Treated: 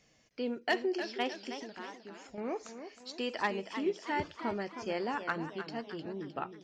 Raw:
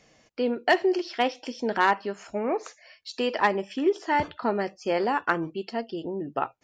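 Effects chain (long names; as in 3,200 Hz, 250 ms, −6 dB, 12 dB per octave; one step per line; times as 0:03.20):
parametric band 720 Hz −5.5 dB 2.7 octaves
0:01.52–0:02.38: downward compressor 6 to 1, threshold −39 dBFS, peak gain reduction 16.5 dB
feedback echo with a swinging delay time 312 ms, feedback 49%, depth 149 cents, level −10 dB
level −5.5 dB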